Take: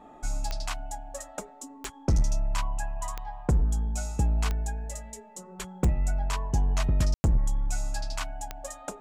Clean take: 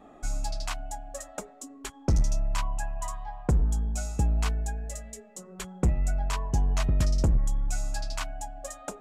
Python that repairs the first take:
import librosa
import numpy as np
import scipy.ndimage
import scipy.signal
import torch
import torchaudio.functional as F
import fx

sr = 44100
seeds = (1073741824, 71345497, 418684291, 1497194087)

y = fx.fix_declick_ar(x, sr, threshold=10.0)
y = fx.notch(y, sr, hz=880.0, q=30.0)
y = fx.fix_ambience(y, sr, seeds[0], print_start_s=1.47, print_end_s=1.97, start_s=7.14, end_s=7.24)